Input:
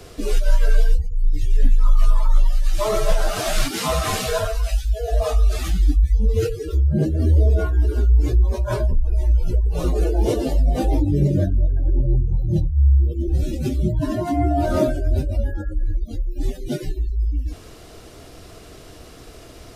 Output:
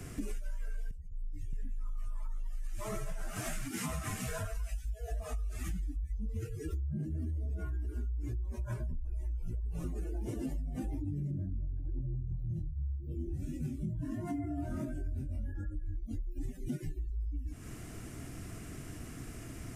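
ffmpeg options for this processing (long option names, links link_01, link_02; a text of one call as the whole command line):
ffmpeg -i in.wav -filter_complex "[0:a]asplit=3[link_01][link_02][link_03];[link_01]afade=type=out:start_time=11.3:duration=0.02[link_04];[link_02]tiltshelf=frequency=970:gain=7,afade=type=in:start_time=11.3:duration=0.02,afade=type=out:start_time=11.8:duration=0.02[link_05];[link_03]afade=type=in:start_time=11.8:duration=0.02[link_06];[link_04][link_05][link_06]amix=inputs=3:normalize=0,asplit=3[link_07][link_08][link_09];[link_07]afade=type=out:start_time=12.41:duration=0.02[link_10];[link_08]flanger=delay=20:depth=4.3:speed=1.4,afade=type=in:start_time=12.41:duration=0.02,afade=type=out:start_time=16.07:duration=0.02[link_11];[link_09]afade=type=in:start_time=16.07:duration=0.02[link_12];[link_10][link_11][link_12]amix=inputs=3:normalize=0,asplit=3[link_13][link_14][link_15];[link_13]atrim=end=0.912[link_16];[link_14]atrim=start=0.908:end=1.532,asetpts=PTS-STARTPTS,volume=-11.5dB[link_17];[link_15]atrim=start=1.528[link_18];[link_16][link_17]acrossfade=duration=0.004:curve1=hsin:curve2=hsin[link_19];[link_19][link_18]acrossfade=duration=0.004:curve1=hsin:curve2=hsin,equalizer=frequency=125:width_type=o:width=1:gain=7,equalizer=frequency=250:width_type=o:width=1:gain=7,equalizer=frequency=500:width_type=o:width=1:gain=-10,equalizer=frequency=1000:width_type=o:width=1:gain=-3,equalizer=frequency=2000:width_type=o:width=1:gain=5,equalizer=frequency=4000:width_type=o:width=1:gain=-12,equalizer=frequency=8000:width_type=o:width=1:gain=5,alimiter=limit=-12dB:level=0:latency=1:release=177,acompressor=threshold=-30dB:ratio=6,volume=-4.5dB" out.wav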